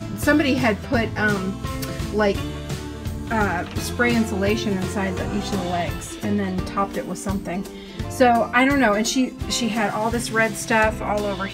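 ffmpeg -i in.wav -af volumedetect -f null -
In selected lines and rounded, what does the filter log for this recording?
mean_volume: -22.0 dB
max_volume: -3.1 dB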